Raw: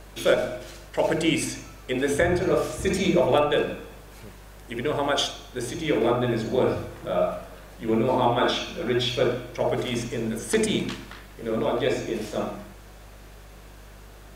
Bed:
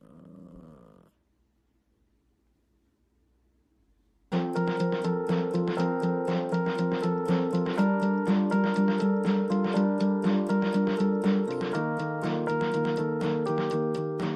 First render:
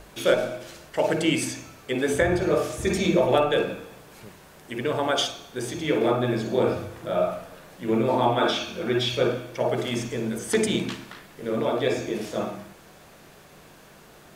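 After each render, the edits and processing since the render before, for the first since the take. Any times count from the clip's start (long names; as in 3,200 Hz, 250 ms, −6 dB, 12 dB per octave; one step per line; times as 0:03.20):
hum removal 50 Hz, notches 2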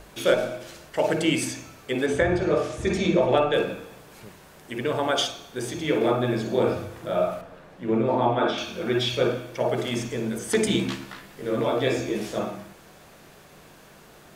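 0:02.06–0:03.54: high-frequency loss of the air 61 metres
0:07.41–0:08.58: low-pass filter 1,900 Hz 6 dB per octave
0:10.65–0:12.39: double-tracking delay 15 ms −4 dB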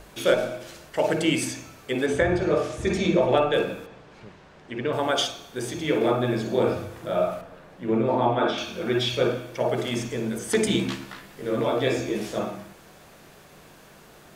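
0:03.86–0:04.93: high-frequency loss of the air 140 metres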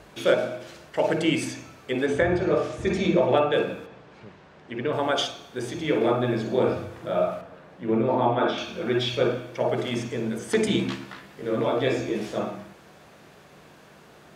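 high-pass filter 72 Hz
high-shelf EQ 7,600 Hz −11.5 dB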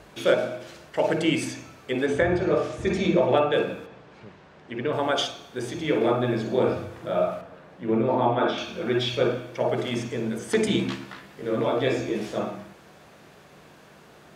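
no processing that can be heard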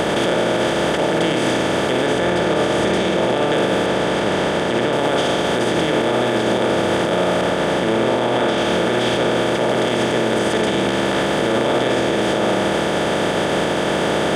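compressor on every frequency bin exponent 0.2
brickwall limiter −9 dBFS, peak gain reduction 8.5 dB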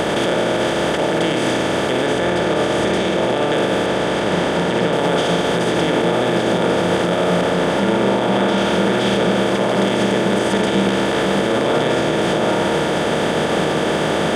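mix in bed +2.5 dB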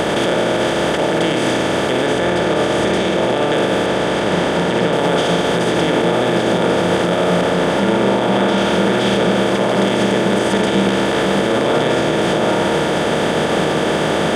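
level +1.5 dB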